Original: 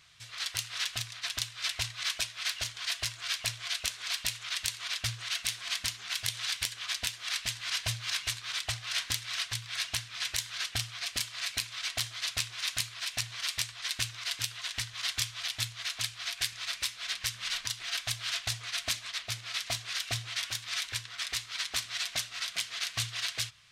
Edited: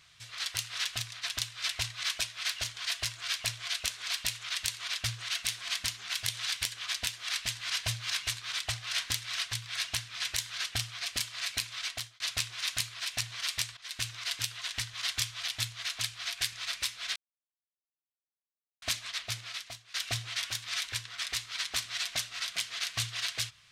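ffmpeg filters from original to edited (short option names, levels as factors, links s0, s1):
-filter_complex "[0:a]asplit=6[s0][s1][s2][s3][s4][s5];[s0]atrim=end=12.2,asetpts=PTS-STARTPTS,afade=t=out:st=11.82:d=0.38[s6];[s1]atrim=start=12.2:end=13.77,asetpts=PTS-STARTPTS,afade=t=in:d=0.004:c=hsin,afade=t=out:st=1.566:d=0.004:c=hsin:silence=0.11885[s7];[s2]atrim=start=13.77:end=17.16,asetpts=PTS-STARTPTS,afade=t=in:d=0.33:silence=0.11885,afade=t=out:st=3.386:d=0.004:c=hsin[s8];[s3]atrim=start=17.16:end=18.82,asetpts=PTS-STARTPTS,volume=0[s9];[s4]atrim=start=18.82:end=19.94,asetpts=PTS-STARTPTS,afade=t=in:d=0.004:c=hsin,afade=t=out:st=0.59:d=0.53:c=qua:silence=0.133352[s10];[s5]atrim=start=19.94,asetpts=PTS-STARTPTS,afade=t=in:d=0.004:c=hsin:silence=0.133352[s11];[s6][s7][s8][s9][s10][s11]concat=n=6:v=0:a=1"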